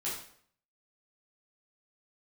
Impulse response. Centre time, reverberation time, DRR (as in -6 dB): 44 ms, 0.60 s, -8.5 dB